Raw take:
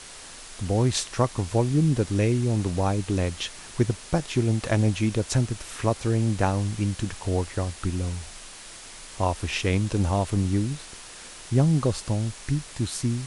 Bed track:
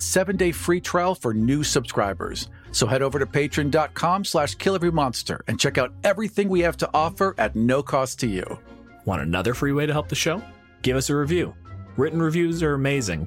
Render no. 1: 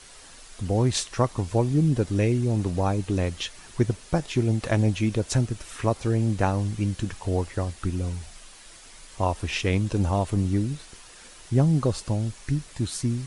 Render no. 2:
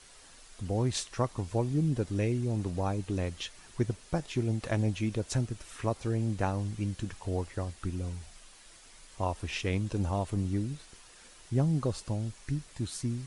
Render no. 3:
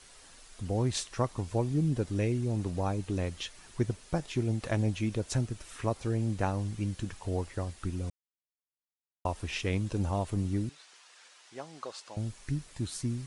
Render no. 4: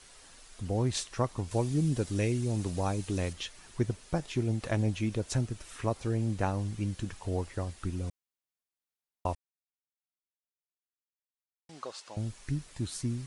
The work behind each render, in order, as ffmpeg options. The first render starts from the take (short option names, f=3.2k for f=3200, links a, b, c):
-af "afftdn=nr=7:nf=-43"
-af "volume=-7dB"
-filter_complex "[0:a]asettb=1/sr,asplit=3[a][b][c];[a]atrim=end=10.694[d];[b]atrim=start=10.69:end=12.17,asetpts=PTS-STARTPTS,afade=t=in:d=0.004:c=qsin,afade=t=out:st=1.476:d=0.004:c=qsin,highpass=750,lowpass=6.7k[e];[c]atrim=start=12.166[f];[d][e]acrossfade=d=0.004:c1=hsin:c2=qsin[g];[g][f]acrossfade=d=0.004:c1=qsin:c2=hsin,asplit=3[h][i][j];[h]atrim=end=8.1,asetpts=PTS-STARTPTS,afade=t=out:st=8.096:d=0.004:c=hsin[k];[i]atrim=start=8.1:end=9.25,asetpts=PTS-STARTPTS,volume=0[l];[j]atrim=start=9.25,asetpts=PTS-STARTPTS,afade=t=in:d=0.004:c=hsin[m];[k][l][m]concat=n=3:v=0:a=1"
-filter_complex "[0:a]asettb=1/sr,asplit=3[a][b][c];[a]atrim=end=1.514[d];[b]atrim=start=1.51:end=3.33,asetpts=PTS-STARTPTS,afade=t=in:d=0.004:c=qsin,afade=t=out:st=1.816:d=0.004:c=qsin,highshelf=f=3.2k:g=8.5[e];[c]atrim=start=3.326[f];[d][e]acrossfade=d=0.004:c1=hsin:c2=qsin[g];[g][f]acrossfade=d=0.004:c1=qsin:c2=hsin,asplit=3[h][i][j];[h]atrim=end=9.35,asetpts=PTS-STARTPTS,afade=t=out:st=9.346:d=0.004:c=hsin[k];[i]atrim=start=9.35:end=11.69,asetpts=PTS-STARTPTS,volume=0[l];[j]atrim=start=11.69,asetpts=PTS-STARTPTS,afade=t=in:d=0.004:c=hsin[m];[k][l][m]concat=n=3:v=0:a=1"